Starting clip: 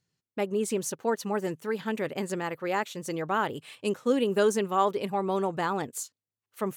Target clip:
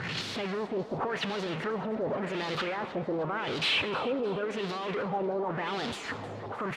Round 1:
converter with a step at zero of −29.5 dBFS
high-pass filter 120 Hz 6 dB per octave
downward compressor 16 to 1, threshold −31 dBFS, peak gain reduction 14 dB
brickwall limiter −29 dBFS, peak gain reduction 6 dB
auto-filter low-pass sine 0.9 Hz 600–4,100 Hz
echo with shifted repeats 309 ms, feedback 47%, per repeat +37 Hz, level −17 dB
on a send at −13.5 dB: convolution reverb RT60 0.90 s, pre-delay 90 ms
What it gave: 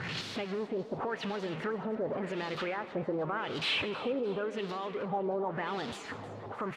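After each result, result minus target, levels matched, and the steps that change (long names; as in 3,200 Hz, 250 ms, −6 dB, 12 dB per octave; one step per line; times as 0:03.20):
downward compressor: peak gain reduction +14 dB; converter with a step at zero: distortion −7 dB
remove: downward compressor 16 to 1, threshold −31 dBFS, peak gain reduction 14 dB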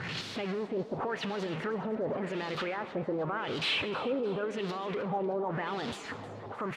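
converter with a step at zero: distortion −7 dB
change: converter with a step at zero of −19 dBFS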